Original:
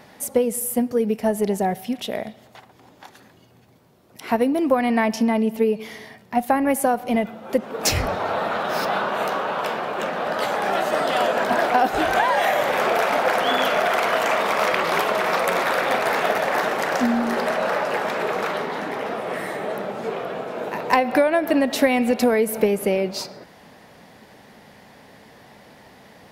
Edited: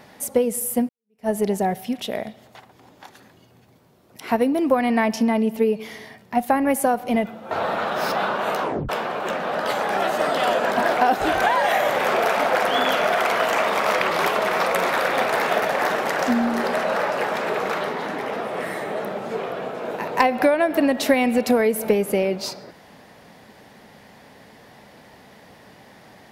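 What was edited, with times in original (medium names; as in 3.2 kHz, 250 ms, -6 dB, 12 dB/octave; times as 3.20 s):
0.89–1.29 s: fade in exponential
7.51–8.24 s: delete
9.35 s: tape stop 0.27 s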